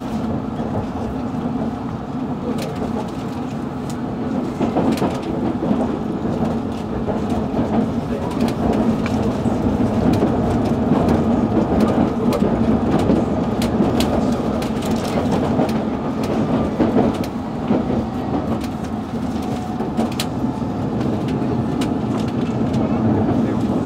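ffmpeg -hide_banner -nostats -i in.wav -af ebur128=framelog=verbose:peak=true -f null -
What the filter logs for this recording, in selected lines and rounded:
Integrated loudness:
  I:         -20.1 LUFS
  Threshold: -30.1 LUFS
Loudness range:
  LRA:         5.4 LU
  Threshold: -40.0 LUFS
  LRA low:   -22.9 LUFS
  LRA high:  -17.5 LUFS
True peak:
  Peak:       -4.2 dBFS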